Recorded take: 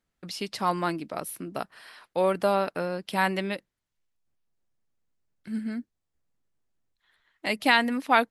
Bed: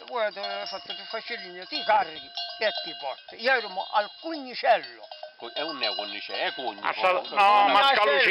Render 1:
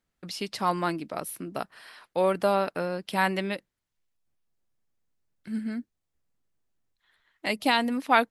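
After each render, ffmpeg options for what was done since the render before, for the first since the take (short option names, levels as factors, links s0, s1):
-filter_complex "[0:a]asettb=1/sr,asplit=3[s0][s1][s2];[s0]atrim=end=7.514[s3];[s1]atrim=start=7.51:end=7.98,asetpts=PTS-STARTPTS,afade=t=in:d=0.004:c=qsin,afade=t=out:st=0.466:d=0.004:c=qsin,equalizer=f=1800:w=1.5:g=-7[s4];[s2]atrim=start=7.976[s5];[s3][s4]acrossfade=d=0.004:c1=hsin:c2=qsin[s6];[s6][s5]acrossfade=d=0.004:c1=qsin:c2=hsin"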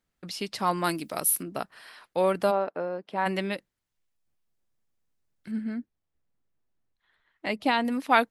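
-filter_complex "[0:a]asettb=1/sr,asplit=3[s0][s1][s2];[s0]atrim=end=0.844[s3];[s1]atrim=start=0.84:end=1.43,asetpts=PTS-STARTPTS,afade=t=in:d=0.004:c=qsin,afade=t=out:st=0.586:d=0.004:c=qsin,aemphasis=mode=production:type=75kf[s4];[s2]atrim=start=1.426[s5];[s3][s4]acrossfade=d=0.004:c1=hsin:c2=qsin[s6];[s6][s5]acrossfade=d=0.004:c1=qsin:c2=hsin,asplit=3[s7][s8][s9];[s7]afade=t=out:st=2.5:d=0.02[s10];[s8]bandpass=f=580:t=q:w=0.77,afade=t=in:st=2.5:d=0.02,afade=t=out:st=3.25:d=0.02[s11];[s9]afade=t=in:st=3.25:d=0.02[s12];[s10][s11][s12]amix=inputs=3:normalize=0,asettb=1/sr,asplit=3[s13][s14][s15];[s13]atrim=end=5.514[s16];[s14]atrim=start=5.51:end=7.85,asetpts=PTS-STARTPTS,afade=t=in:d=0.004:c=qsin,afade=t=out:st=2.336:d=0.004:c=qsin,lowpass=f=2400:p=1[s17];[s15]atrim=start=7.846[s18];[s16][s17]acrossfade=d=0.004:c1=hsin:c2=qsin[s19];[s19][s18]acrossfade=d=0.004:c1=qsin:c2=hsin"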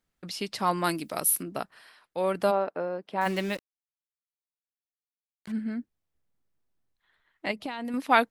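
-filter_complex "[0:a]asettb=1/sr,asplit=3[s0][s1][s2];[s0]atrim=end=3.214[s3];[s1]atrim=start=3.21:end=5.52,asetpts=PTS-STARTPTS,afade=t=in:d=0.004:c=qsin,afade=t=out:st=2.306:d=0.004:c=qsin,acrusher=bits=6:mix=0:aa=0.5[s4];[s2]atrim=start=5.516[s5];[s3][s4]acrossfade=d=0.004:c1=hsin:c2=qsin[s6];[s6][s5]acrossfade=d=0.004:c1=qsin:c2=hsin,asettb=1/sr,asplit=3[s7][s8][s9];[s7]atrim=end=7.514[s10];[s8]atrim=start=7.51:end=7.94,asetpts=PTS-STARTPTS,afade=t=in:d=0.004:c=qsin,afade=t=out:st=0.426:d=0.004:c=qsin,acompressor=threshold=0.0316:ratio=12:attack=3.2:release=140:knee=1:detection=peak[s11];[s9]atrim=start=7.936[s12];[s10][s11]acrossfade=d=0.004:c1=hsin:c2=qsin[s13];[s13][s12]acrossfade=d=0.004:c1=qsin:c2=hsin,asplit=3[s14][s15][s16];[s14]atrim=end=2.01,asetpts=PTS-STARTPTS,afade=t=out:st=1.55:d=0.46:silence=0.334965[s17];[s15]atrim=start=2.01:end=2.02,asetpts=PTS-STARTPTS,volume=0.335[s18];[s16]atrim=start=2.02,asetpts=PTS-STARTPTS,afade=t=in:d=0.46:silence=0.334965[s19];[s17][s18][s19]concat=n=3:v=0:a=1"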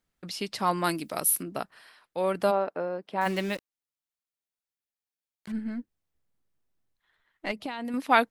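-filter_complex "[0:a]asettb=1/sr,asplit=3[s0][s1][s2];[s0]atrim=end=5.524[s3];[s1]atrim=start=5.52:end=7.52,asetpts=PTS-STARTPTS,afade=t=in:d=0.004:c=qsin,afade=t=out:st=1.996:d=0.004:c=qsin,aeval=exprs='if(lt(val(0),0),0.708*val(0),val(0))':c=same[s4];[s2]atrim=start=7.516[s5];[s3][s4]acrossfade=d=0.004:c1=hsin:c2=qsin[s6];[s6][s5]acrossfade=d=0.004:c1=qsin:c2=hsin"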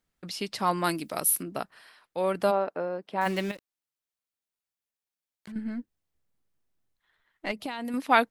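-filter_complex "[0:a]asettb=1/sr,asplit=3[s0][s1][s2];[s0]atrim=end=3.514[s3];[s1]atrim=start=3.51:end=5.56,asetpts=PTS-STARTPTS,afade=t=in:d=0.004:c=qsin,afade=t=out:st=2.046:d=0.004:c=qsin,acompressor=threshold=0.00794:ratio=2.5:attack=3.2:release=140:knee=1:detection=peak[s4];[s2]atrim=start=5.556[s5];[s3][s4]acrossfade=d=0.004:c1=hsin:c2=qsin[s6];[s6][s5]acrossfade=d=0.004:c1=qsin:c2=hsin,asettb=1/sr,asplit=3[s7][s8][s9];[s7]atrim=end=7.594[s10];[s8]atrim=start=7.59:end=7.99,asetpts=PTS-STARTPTS,afade=t=in:d=0.004:c=qsin,afade=t=out:st=0.396:d=0.004:c=qsin,highshelf=f=7800:g=9.5[s11];[s9]atrim=start=7.986[s12];[s10][s11]acrossfade=d=0.004:c1=hsin:c2=qsin[s13];[s13][s12]acrossfade=d=0.004:c1=qsin:c2=hsin"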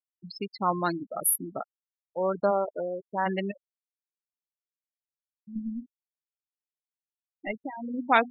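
-af "bandreject=f=245:t=h:w=4,bandreject=f=490:t=h:w=4,bandreject=f=735:t=h:w=4,bandreject=f=980:t=h:w=4,bandreject=f=1225:t=h:w=4,bandreject=f=1470:t=h:w=4,bandreject=f=1715:t=h:w=4,bandreject=f=1960:t=h:w=4,bandreject=f=2205:t=h:w=4,bandreject=f=2450:t=h:w=4,bandreject=f=2695:t=h:w=4,bandreject=f=2940:t=h:w=4,afftfilt=real='re*gte(hypot(re,im),0.0631)':imag='im*gte(hypot(re,im),0.0631)':win_size=1024:overlap=0.75"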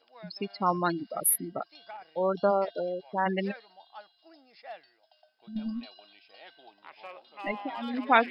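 -filter_complex "[1:a]volume=0.075[s0];[0:a][s0]amix=inputs=2:normalize=0"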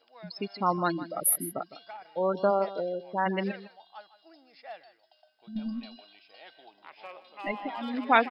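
-af "aecho=1:1:157:0.178"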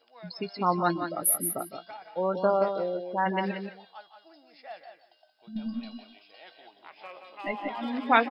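-filter_complex "[0:a]asplit=2[s0][s1];[s1]adelay=17,volume=0.237[s2];[s0][s2]amix=inputs=2:normalize=0,asplit=2[s3][s4];[s4]aecho=0:1:177:0.422[s5];[s3][s5]amix=inputs=2:normalize=0"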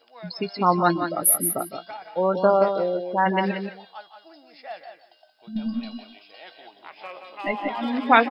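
-af "volume=2,alimiter=limit=0.891:level=0:latency=1"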